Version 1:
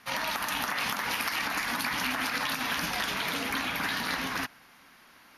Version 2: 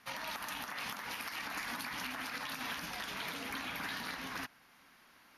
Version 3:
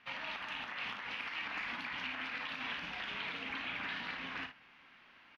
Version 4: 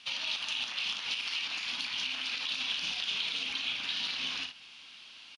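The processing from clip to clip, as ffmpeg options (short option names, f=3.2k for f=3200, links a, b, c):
-af "alimiter=limit=-22.5dB:level=0:latency=1:release=426,volume=-6.5dB"
-af "areverse,acompressor=mode=upward:threshold=-55dB:ratio=2.5,areverse,lowpass=f=2.8k:t=q:w=2.3,aecho=1:1:34|58:0.316|0.316,volume=-4dB"
-af "alimiter=level_in=10.5dB:limit=-24dB:level=0:latency=1:release=165,volume=-10.5dB,aexciter=amount=5.4:drive=9.7:freq=2.9k,aresample=22050,aresample=44100"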